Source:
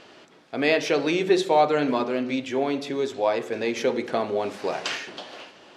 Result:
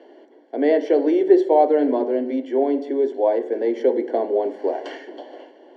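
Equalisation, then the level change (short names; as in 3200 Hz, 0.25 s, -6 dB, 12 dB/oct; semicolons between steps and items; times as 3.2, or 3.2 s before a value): running mean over 35 samples; steep high-pass 270 Hz 48 dB/oct; +8.0 dB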